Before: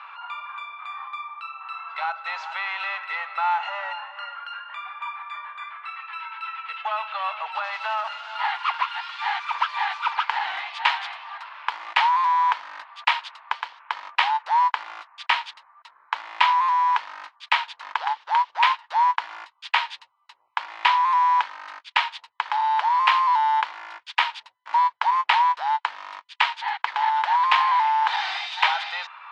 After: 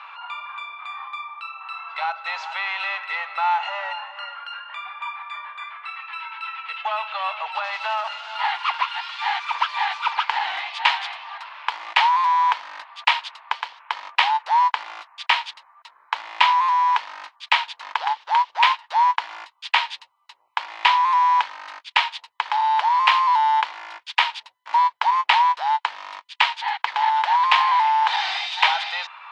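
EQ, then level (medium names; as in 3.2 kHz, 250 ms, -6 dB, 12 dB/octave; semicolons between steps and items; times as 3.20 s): bass shelf 310 Hz -6 dB; peaking EQ 1.4 kHz -5 dB 1.1 oct; +5.0 dB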